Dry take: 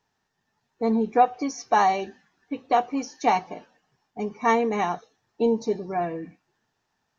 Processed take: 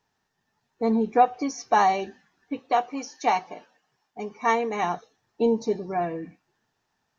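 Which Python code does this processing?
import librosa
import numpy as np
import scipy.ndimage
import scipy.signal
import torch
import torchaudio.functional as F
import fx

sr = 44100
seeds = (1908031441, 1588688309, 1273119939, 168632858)

y = fx.low_shelf(x, sr, hz=300.0, db=-10.0, at=(2.59, 4.83))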